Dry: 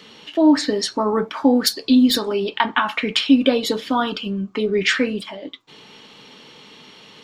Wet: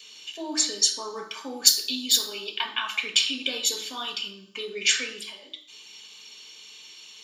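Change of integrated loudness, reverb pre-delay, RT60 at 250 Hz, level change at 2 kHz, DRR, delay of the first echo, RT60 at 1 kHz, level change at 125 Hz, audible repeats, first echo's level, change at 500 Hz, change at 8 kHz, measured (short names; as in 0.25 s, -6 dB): -5.0 dB, 3 ms, 0.60 s, -6.5 dB, 3.0 dB, none, 0.55 s, n/a, none, none, -17.0 dB, +8.0 dB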